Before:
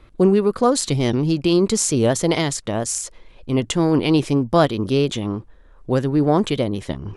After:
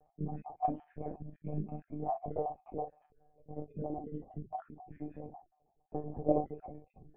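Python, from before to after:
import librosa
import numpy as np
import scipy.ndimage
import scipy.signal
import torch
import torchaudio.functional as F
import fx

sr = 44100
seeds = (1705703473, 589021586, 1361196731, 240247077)

y = fx.spec_dropout(x, sr, seeds[0], share_pct=53)
y = fx.formant_cascade(y, sr, vowel='a')
y = fx.peak_eq(y, sr, hz=1200.0, db=-3.0, octaves=2.6)
y = fx.formant_shift(y, sr, semitones=-6)
y = fx.room_early_taps(y, sr, ms=(22, 45), db=(-8.5, -8.0))
y = fx.lpc_monotone(y, sr, seeds[1], pitch_hz=150.0, order=16)
y = F.gain(torch.from_numpy(y), 3.5).numpy()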